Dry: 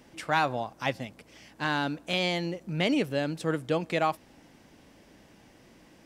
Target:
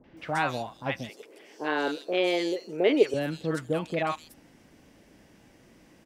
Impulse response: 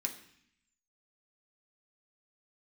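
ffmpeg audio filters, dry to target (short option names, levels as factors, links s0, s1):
-filter_complex "[0:a]asettb=1/sr,asplit=3[s0][s1][s2];[s0]atrim=end=1.094[s3];[s1]atrim=start=1.09:end=3.14,asetpts=PTS-STARTPTS,afade=t=in:d=0.004:c=qsin,afade=t=out:st=2.046:d=0.004:c=qsin,highpass=f=410:t=q:w=4.9[s4];[s2]atrim=start=3.136[s5];[s3][s4]acrossfade=d=0.004:c1=hsin:c2=qsin[s6];[s6][s5]acrossfade=d=0.004:c1=qsin:c2=hsin,acrossover=split=930|3800[s7][s8][s9];[s8]adelay=40[s10];[s9]adelay=170[s11];[s7][s10][s11]amix=inputs=3:normalize=0"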